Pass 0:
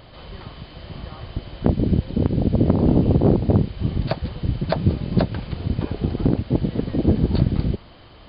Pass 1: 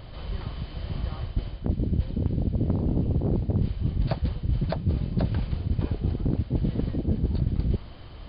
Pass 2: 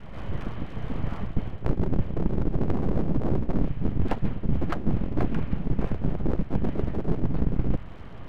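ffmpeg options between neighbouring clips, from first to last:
-af "lowshelf=f=130:g=11.5,areverse,acompressor=threshold=0.112:ratio=6,areverse,volume=0.75"
-af "lowpass=f=2400:w=0.5412,lowpass=f=2400:w=1.3066,adynamicequalizer=threshold=0.0112:dfrequency=380:dqfactor=0.87:tfrequency=380:tqfactor=0.87:attack=5:release=100:ratio=0.375:range=2.5:mode=cutabove:tftype=bell,aeval=exprs='abs(val(0))':c=same,volume=1.58"

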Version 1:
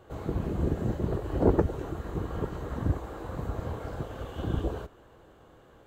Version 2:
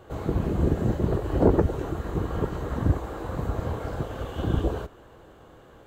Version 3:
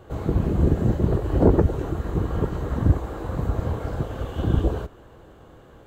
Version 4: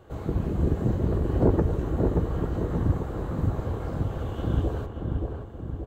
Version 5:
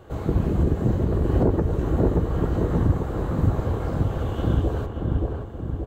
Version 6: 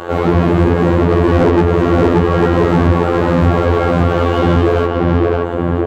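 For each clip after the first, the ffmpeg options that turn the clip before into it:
-af "alimiter=level_in=3.76:limit=0.891:release=50:level=0:latency=1,volume=0.473"
-af "lowshelf=f=290:g=5"
-filter_complex "[0:a]asplit=2[s0][s1];[s1]adelay=578,lowpass=f=1400:p=1,volume=0.668,asplit=2[s2][s3];[s3]adelay=578,lowpass=f=1400:p=1,volume=0.55,asplit=2[s4][s5];[s5]adelay=578,lowpass=f=1400:p=1,volume=0.55,asplit=2[s6][s7];[s7]adelay=578,lowpass=f=1400:p=1,volume=0.55,asplit=2[s8][s9];[s9]adelay=578,lowpass=f=1400:p=1,volume=0.55,asplit=2[s10][s11];[s11]adelay=578,lowpass=f=1400:p=1,volume=0.55,asplit=2[s12][s13];[s13]adelay=578,lowpass=f=1400:p=1,volume=0.55,asplit=2[s14][s15];[s15]adelay=578,lowpass=f=1400:p=1,volume=0.55[s16];[s0][s2][s4][s6][s8][s10][s12][s14][s16]amix=inputs=9:normalize=0,volume=0.562"
-af "alimiter=limit=0.178:level=0:latency=1:release=305,volume=1.78"
-filter_complex "[0:a]afftfilt=real='hypot(re,im)*cos(PI*b)':imag='0':win_size=2048:overlap=0.75,asplit=2[s0][s1];[s1]highpass=f=720:p=1,volume=35.5,asoftclip=type=tanh:threshold=0.398[s2];[s0][s2]amix=inputs=2:normalize=0,lowpass=f=2200:p=1,volume=0.501,volume=2.11"

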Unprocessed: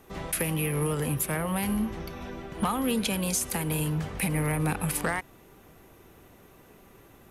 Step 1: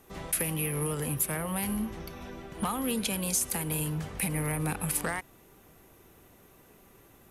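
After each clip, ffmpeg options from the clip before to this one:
-af "equalizer=f=11000:t=o:w=1.7:g=5.5,volume=0.631"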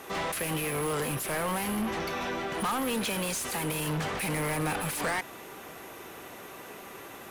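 -filter_complex "[0:a]asplit=2[s0][s1];[s1]highpass=f=720:p=1,volume=28.2,asoftclip=type=tanh:threshold=0.126[s2];[s0][s2]amix=inputs=2:normalize=0,lowpass=f=3700:p=1,volume=0.501,volume=0.631"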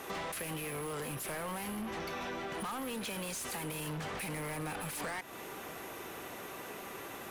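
-af "acompressor=threshold=0.0126:ratio=5"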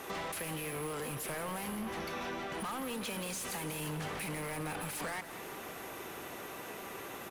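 -af "aecho=1:1:175|350|525|700|875|1050:0.224|0.125|0.0702|0.0393|0.022|0.0123"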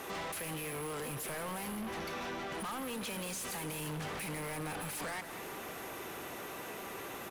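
-af "asoftclip=type=tanh:threshold=0.0133,volume=1.26"

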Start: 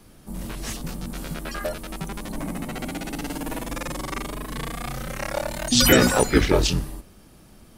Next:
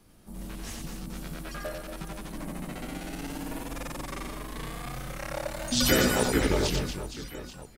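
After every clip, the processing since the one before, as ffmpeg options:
-af "aecho=1:1:90|234|464.4|833|1423:0.631|0.398|0.251|0.158|0.1,volume=0.376"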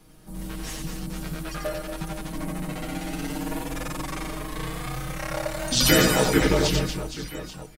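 -af "aecho=1:1:6.4:0.65,volume=1.5"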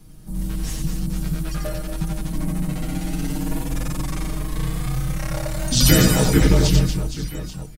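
-af "bass=f=250:g=13,treble=f=4000:g=6,volume=0.794"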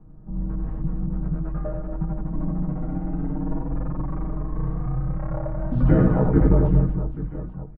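-af "lowpass=f=1200:w=0.5412,lowpass=f=1200:w=1.3066,volume=0.841"

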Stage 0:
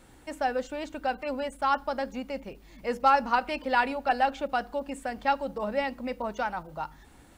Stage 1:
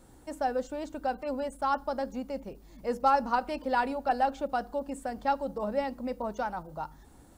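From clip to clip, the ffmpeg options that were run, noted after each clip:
-af "equalizer=f=2400:t=o:w=1.5:g=-10.5"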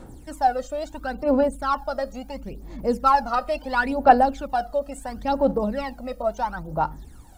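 -af "aphaser=in_gain=1:out_gain=1:delay=1.6:decay=0.73:speed=0.73:type=sinusoidal,volume=1.5"

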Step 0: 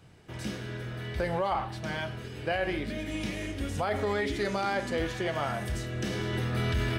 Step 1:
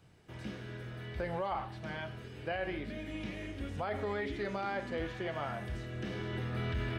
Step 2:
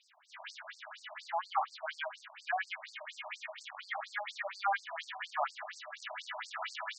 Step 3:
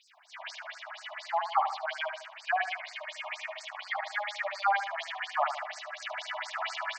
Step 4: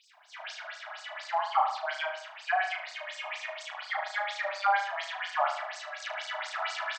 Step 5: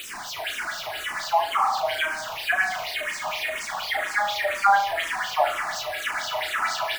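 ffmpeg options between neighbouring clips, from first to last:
-filter_complex "[0:a]acrossover=split=3800[s0][s1];[s1]acompressor=threshold=0.00112:ratio=4:attack=1:release=60[s2];[s0][s2]amix=inputs=2:normalize=0,volume=0.473"
-filter_complex "[0:a]acrossover=split=260|1200[s0][s1][s2];[s0]acrusher=bits=2:mode=log:mix=0:aa=0.000001[s3];[s3][s1][s2]amix=inputs=3:normalize=0,afftfilt=real='re*between(b*sr/1024,800*pow(6200/800,0.5+0.5*sin(2*PI*4.2*pts/sr))/1.41,800*pow(6200/800,0.5+0.5*sin(2*PI*4.2*pts/sr))*1.41)':imag='im*between(b*sr/1024,800*pow(6200/800,0.5+0.5*sin(2*PI*4.2*pts/sr))/1.41,800*pow(6200/800,0.5+0.5*sin(2*PI*4.2*pts/sr))*1.41)':win_size=1024:overlap=0.75,volume=2.99"
-filter_complex "[0:a]asplit=2[s0][s1];[s1]adelay=75,lowpass=f=2200:p=1,volume=0.447,asplit=2[s2][s3];[s3]adelay=75,lowpass=f=2200:p=1,volume=0.5,asplit=2[s4][s5];[s5]adelay=75,lowpass=f=2200:p=1,volume=0.5,asplit=2[s6][s7];[s7]adelay=75,lowpass=f=2200:p=1,volume=0.5,asplit=2[s8][s9];[s9]adelay=75,lowpass=f=2200:p=1,volume=0.5,asplit=2[s10][s11];[s11]adelay=75,lowpass=f=2200:p=1,volume=0.5[s12];[s0][s2][s4][s6][s8][s10][s12]amix=inputs=7:normalize=0,volume=1.78"
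-filter_complex "[0:a]asplit=2[s0][s1];[s1]adelay=35,volume=0.562[s2];[s0][s2]amix=inputs=2:normalize=0"
-filter_complex "[0:a]aeval=exprs='val(0)+0.5*0.015*sgn(val(0))':c=same,asplit=2[s0][s1];[s1]afreqshift=-2[s2];[s0][s2]amix=inputs=2:normalize=1,volume=2.66"

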